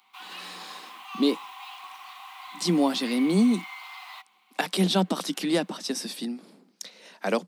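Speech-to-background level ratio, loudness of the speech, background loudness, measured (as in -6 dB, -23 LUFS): 14.5 dB, -26.5 LUFS, -41.0 LUFS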